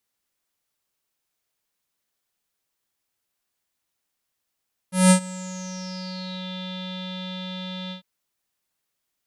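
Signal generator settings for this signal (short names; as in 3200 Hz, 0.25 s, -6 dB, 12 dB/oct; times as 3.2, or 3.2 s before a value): synth note square F#3 12 dB/oct, low-pass 3600 Hz, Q 12, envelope 1.5 oct, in 1.53 s, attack 0.186 s, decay 0.09 s, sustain -22 dB, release 0.11 s, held 2.99 s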